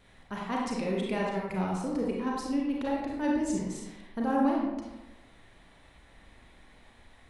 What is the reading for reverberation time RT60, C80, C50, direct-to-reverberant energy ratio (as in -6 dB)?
1.1 s, 3.0 dB, 0.0 dB, -3.0 dB